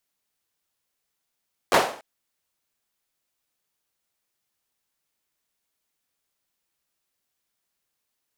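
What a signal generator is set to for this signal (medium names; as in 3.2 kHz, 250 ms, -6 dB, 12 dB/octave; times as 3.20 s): hand clap length 0.29 s, bursts 3, apart 10 ms, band 650 Hz, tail 0.47 s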